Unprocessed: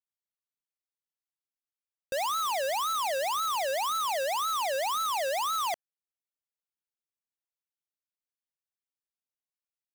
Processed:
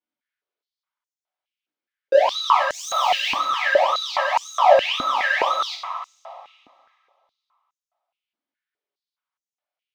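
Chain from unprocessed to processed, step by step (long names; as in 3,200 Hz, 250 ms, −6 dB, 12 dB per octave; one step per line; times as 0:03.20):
0:02.73–0:03.31: spectral tilt +4 dB per octave
brickwall limiter −15 dBFS, peak gain reduction 3.5 dB
high-frequency loss of the air 220 metres
coupled-rooms reverb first 0.39 s, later 2.4 s, from −18 dB, DRR −7 dB
high-pass on a step sequencer 4.8 Hz 270–6,800 Hz
level +2 dB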